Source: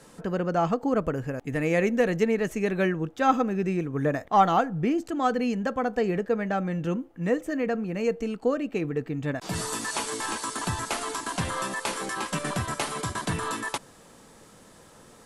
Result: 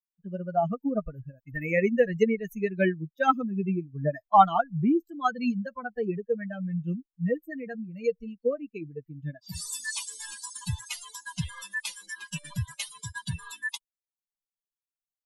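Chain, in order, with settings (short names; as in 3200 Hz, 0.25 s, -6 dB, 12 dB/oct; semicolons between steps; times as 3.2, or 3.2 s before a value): per-bin expansion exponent 3; gain +5.5 dB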